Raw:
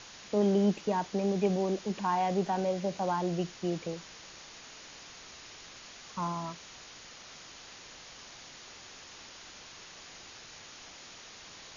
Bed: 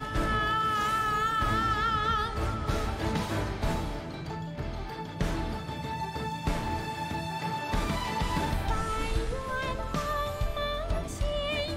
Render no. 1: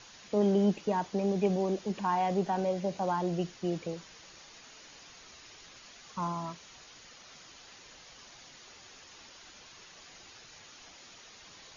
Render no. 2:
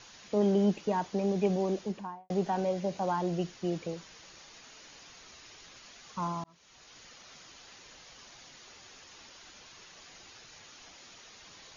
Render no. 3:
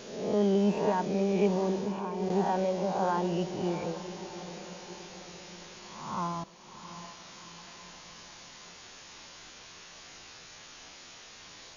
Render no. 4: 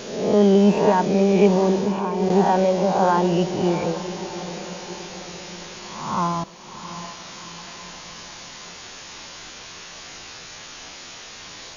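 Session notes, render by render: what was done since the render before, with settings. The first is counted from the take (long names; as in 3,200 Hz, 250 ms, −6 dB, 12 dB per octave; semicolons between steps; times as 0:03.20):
broadband denoise 6 dB, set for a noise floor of −50 dBFS
0:01.77–0:02.30: fade out and dull; 0:06.44–0:07.00: fade in
peak hold with a rise ahead of every peak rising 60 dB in 0.88 s; feedback delay with all-pass diffusion 712 ms, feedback 53%, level −12 dB
level +10.5 dB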